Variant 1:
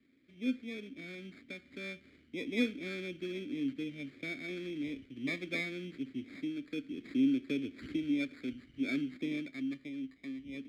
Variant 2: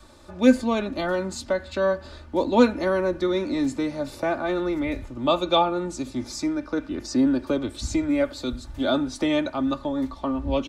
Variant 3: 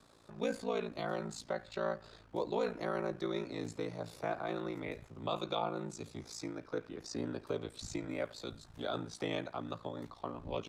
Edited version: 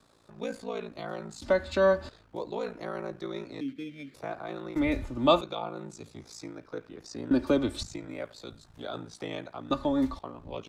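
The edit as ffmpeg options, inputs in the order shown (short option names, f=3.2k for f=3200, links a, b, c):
-filter_complex "[1:a]asplit=4[a][b][c][d];[2:a]asplit=6[e][f][g][h][i][j];[e]atrim=end=1.422[k];[a]atrim=start=1.418:end=2.092[l];[f]atrim=start=2.088:end=3.612[m];[0:a]atrim=start=3.608:end=4.142[n];[g]atrim=start=4.138:end=4.762[o];[b]atrim=start=4.758:end=5.412[p];[h]atrim=start=5.408:end=7.312[q];[c]atrim=start=7.308:end=7.832[r];[i]atrim=start=7.828:end=9.712[s];[d]atrim=start=9.708:end=10.192[t];[j]atrim=start=10.188[u];[k][l]acrossfade=d=0.004:c1=hsin:c2=hsin[v];[v][m]acrossfade=d=0.004:c1=hsin:c2=hsin[w];[w][n]acrossfade=d=0.004:c1=hsin:c2=hsin[x];[x][o]acrossfade=d=0.004:c1=hsin:c2=hsin[y];[y][p]acrossfade=d=0.004:c1=hsin:c2=hsin[z];[z][q]acrossfade=d=0.004:c1=hsin:c2=hsin[aa];[aa][r]acrossfade=d=0.004:c1=hsin:c2=hsin[ab];[ab][s]acrossfade=d=0.004:c1=hsin:c2=hsin[ac];[ac][t]acrossfade=d=0.004:c1=hsin:c2=hsin[ad];[ad][u]acrossfade=d=0.004:c1=hsin:c2=hsin"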